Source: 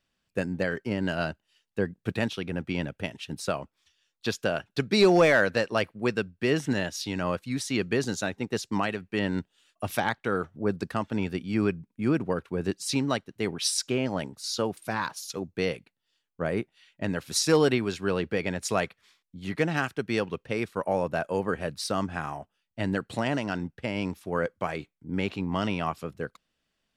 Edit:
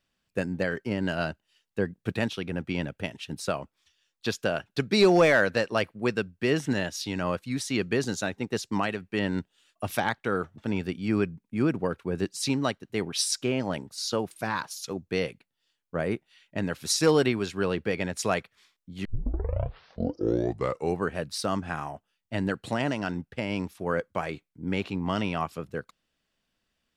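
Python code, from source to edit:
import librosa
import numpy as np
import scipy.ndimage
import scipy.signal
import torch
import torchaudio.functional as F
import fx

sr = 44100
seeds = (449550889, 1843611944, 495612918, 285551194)

y = fx.edit(x, sr, fx.cut(start_s=10.58, length_s=0.46),
    fx.tape_start(start_s=19.51, length_s=2.08), tone=tone)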